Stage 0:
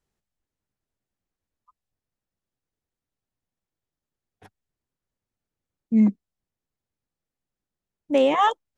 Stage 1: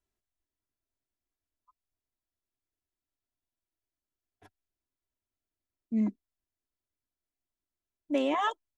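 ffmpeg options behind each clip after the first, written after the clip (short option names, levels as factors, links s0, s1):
-af "aecho=1:1:3:0.61,volume=0.376"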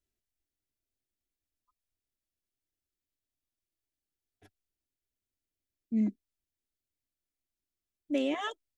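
-af "equalizer=f=1000:t=o:w=0.86:g=-13.5"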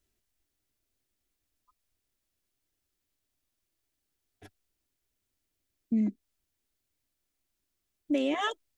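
-af "acompressor=threshold=0.02:ratio=4,volume=2.66"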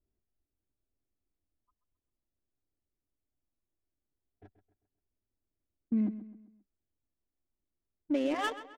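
-filter_complex "[0:a]adynamicsmooth=sensitivity=6:basefreq=830,asplit=2[s0][s1];[s1]adelay=132,lowpass=f=4700:p=1,volume=0.211,asplit=2[s2][s3];[s3]adelay=132,lowpass=f=4700:p=1,volume=0.42,asplit=2[s4][s5];[s5]adelay=132,lowpass=f=4700:p=1,volume=0.42,asplit=2[s6][s7];[s7]adelay=132,lowpass=f=4700:p=1,volume=0.42[s8];[s0][s2][s4][s6][s8]amix=inputs=5:normalize=0,volume=0.794"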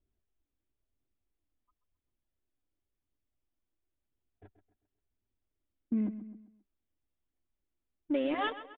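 -af "aphaser=in_gain=1:out_gain=1:delay=4.2:decay=0.28:speed=0.95:type=triangular,aresample=8000,aresample=44100"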